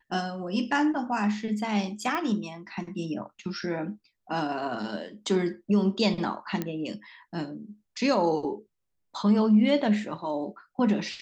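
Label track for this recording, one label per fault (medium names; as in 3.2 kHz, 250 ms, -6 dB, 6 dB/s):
2.150000	2.150000	pop -17 dBFS
6.620000	6.620000	pop -16 dBFS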